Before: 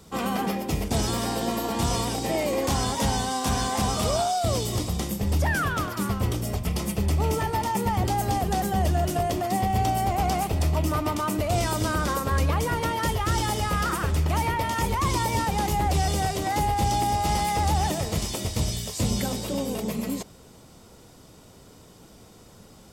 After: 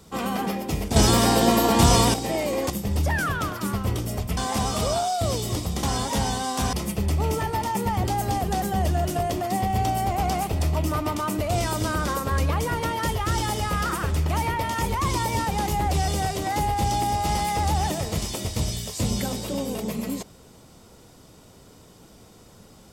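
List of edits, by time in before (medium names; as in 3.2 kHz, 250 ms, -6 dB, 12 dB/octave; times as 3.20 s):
0.96–2.14 s: gain +8.5 dB
2.70–3.60 s: swap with 5.06–6.73 s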